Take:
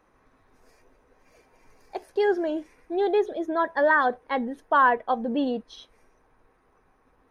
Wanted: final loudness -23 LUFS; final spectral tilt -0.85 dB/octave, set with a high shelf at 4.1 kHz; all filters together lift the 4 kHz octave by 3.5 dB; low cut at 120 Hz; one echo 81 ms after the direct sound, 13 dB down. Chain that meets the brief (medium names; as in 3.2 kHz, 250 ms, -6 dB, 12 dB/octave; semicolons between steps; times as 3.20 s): high-pass 120 Hz; peaking EQ 4 kHz +8 dB; treble shelf 4.1 kHz -6.5 dB; delay 81 ms -13 dB; trim +1.5 dB